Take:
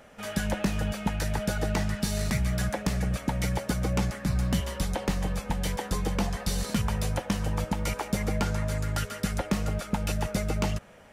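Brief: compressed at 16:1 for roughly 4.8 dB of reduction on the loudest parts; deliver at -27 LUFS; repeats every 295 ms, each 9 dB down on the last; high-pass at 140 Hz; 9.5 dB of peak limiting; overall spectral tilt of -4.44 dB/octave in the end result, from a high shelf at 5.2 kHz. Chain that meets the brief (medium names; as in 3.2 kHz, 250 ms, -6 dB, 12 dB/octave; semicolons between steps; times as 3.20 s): high-pass 140 Hz; treble shelf 5.2 kHz +5.5 dB; compression 16:1, threshold -28 dBFS; peak limiter -22.5 dBFS; feedback delay 295 ms, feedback 35%, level -9 dB; trim +7.5 dB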